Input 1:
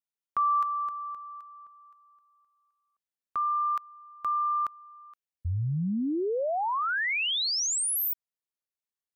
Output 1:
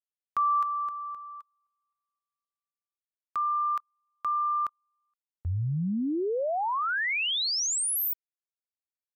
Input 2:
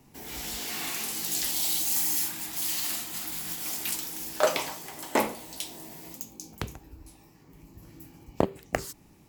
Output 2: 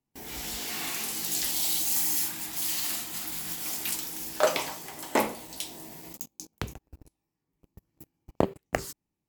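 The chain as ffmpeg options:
-af "agate=range=0.0398:threshold=0.00447:ratio=16:release=20:detection=rms"

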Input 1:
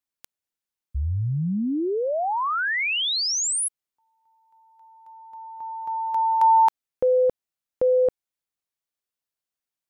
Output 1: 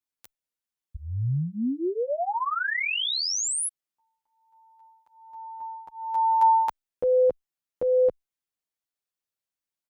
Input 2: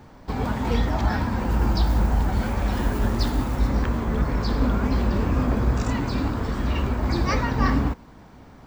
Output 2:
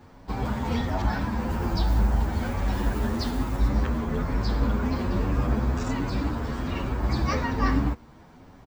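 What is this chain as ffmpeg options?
-filter_complex "[0:a]asplit=2[s0][s1];[s1]adelay=9.1,afreqshift=1.2[s2];[s0][s2]amix=inputs=2:normalize=1"

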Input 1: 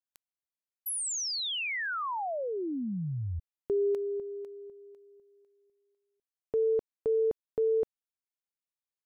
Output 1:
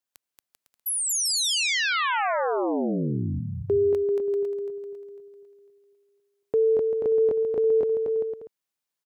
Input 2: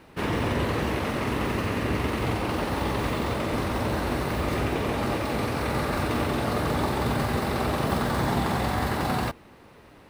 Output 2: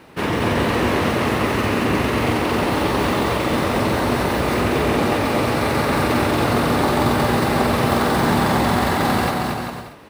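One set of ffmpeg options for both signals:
-af "highpass=f=110:p=1,aecho=1:1:230|391|503.7|582.6|637.8:0.631|0.398|0.251|0.158|0.1,volume=2.11"

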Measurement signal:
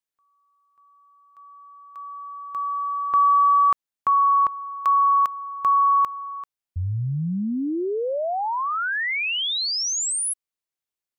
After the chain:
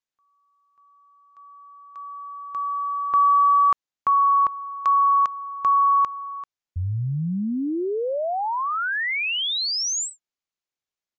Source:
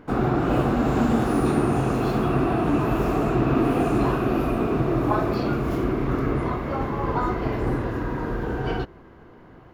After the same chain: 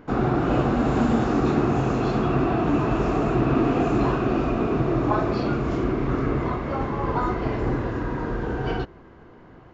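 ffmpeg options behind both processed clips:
-af "aresample=16000,aresample=44100"

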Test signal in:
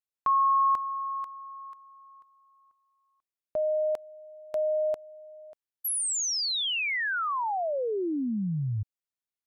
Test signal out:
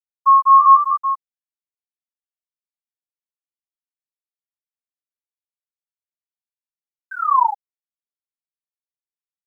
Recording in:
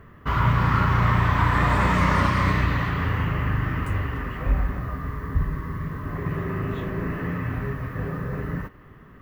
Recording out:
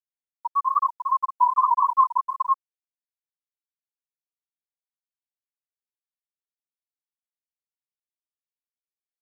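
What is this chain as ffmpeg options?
-filter_complex "[0:a]asplit=2[s0][s1];[s1]acrusher=samples=41:mix=1:aa=0.000001:lfo=1:lforange=65.6:lforate=0.42,volume=0.398[s2];[s0][s2]amix=inputs=2:normalize=0,highpass=f=1000:t=q:w=3.5,asplit=6[s3][s4][s5][s6][s7][s8];[s4]adelay=206,afreqshift=85,volume=0.398[s9];[s5]adelay=412,afreqshift=170,volume=0.176[s10];[s6]adelay=618,afreqshift=255,volume=0.0767[s11];[s7]adelay=824,afreqshift=340,volume=0.0339[s12];[s8]adelay=1030,afreqshift=425,volume=0.015[s13];[s3][s9][s10][s11][s12][s13]amix=inputs=6:normalize=0,dynaudnorm=f=110:g=9:m=2,flanger=delay=16:depth=5.3:speed=0.32,afftfilt=real='re*gte(hypot(re,im),1.26)':imag='im*gte(hypot(re,im),1.26)':win_size=1024:overlap=0.75,acrusher=bits=10:mix=0:aa=0.000001,volume=1.41"

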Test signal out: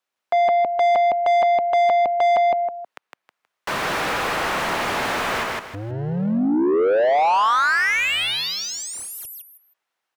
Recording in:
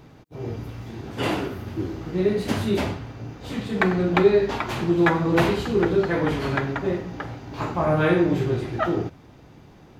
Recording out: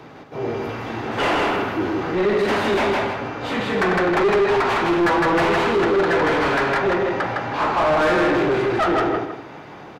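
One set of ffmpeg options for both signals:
-filter_complex "[0:a]acrossover=split=190|610|2900[s0][s1][s2][s3];[s0]asoftclip=type=hard:threshold=0.0251[s4];[s2]dynaudnorm=f=390:g=3:m=1.68[s5];[s3]alimiter=level_in=1.58:limit=0.0631:level=0:latency=1:release=403,volume=0.631[s6];[s4][s1][s5][s6]amix=inputs=4:normalize=0,aecho=1:1:159|318|477:0.631|0.158|0.0394,asplit=2[s7][s8];[s8]highpass=f=720:p=1,volume=31.6,asoftclip=type=tanh:threshold=0.891[s9];[s7][s9]amix=inputs=2:normalize=0,lowpass=f=1600:p=1,volume=0.501,volume=0.376"

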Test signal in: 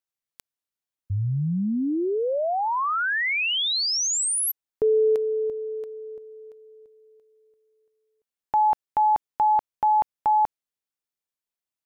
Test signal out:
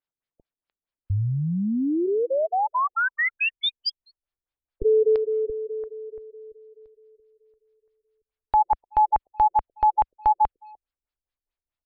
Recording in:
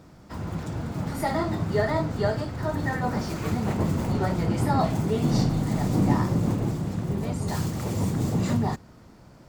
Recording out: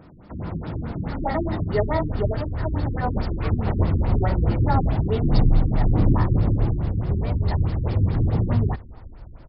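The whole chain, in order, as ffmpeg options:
-filter_complex "[0:a]asplit=2[s0][s1];[s1]adelay=300,highpass=300,lowpass=3400,asoftclip=type=hard:threshold=0.133,volume=0.0447[s2];[s0][s2]amix=inputs=2:normalize=0,asubboost=boost=11:cutoff=55,afftfilt=real='re*lt(b*sr/1024,380*pow(5500/380,0.5+0.5*sin(2*PI*4.7*pts/sr)))':imag='im*lt(b*sr/1024,380*pow(5500/380,0.5+0.5*sin(2*PI*4.7*pts/sr)))':win_size=1024:overlap=0.75,volume=1.41"

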